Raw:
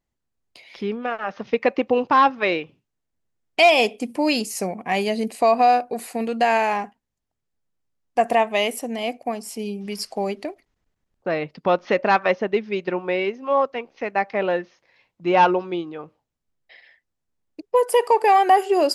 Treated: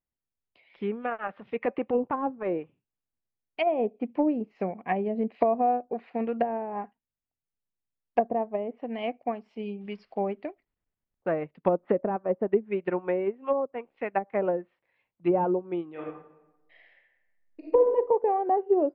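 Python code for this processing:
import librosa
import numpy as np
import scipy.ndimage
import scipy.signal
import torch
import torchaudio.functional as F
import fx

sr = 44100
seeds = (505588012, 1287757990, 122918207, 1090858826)

y = fx.transient(x, sr, attack_db=-8, sustain_db=2, at=(1.27, 3.67))
y = fx.high_shelf(y, sr, hz=2400.0, db=11.5, at=(4.96, 6.1))
y = fx.reverb_throw(y, sr, start_s=15.91, length_s=1.93, rt60_s=1.1, drr_db=-5.0)
y = fx.env_lowpass_down(y, sr, base_hz=490.0, full_db=-17.0)
y = scipy.signal.sosfilt(scipy.signal.butter(4, 3100.0, 'lowpass', fs=sr, output='sos'), y)
y = fx.upward_expand(y, sr, threshold_db=-42.0, expansion=1.5)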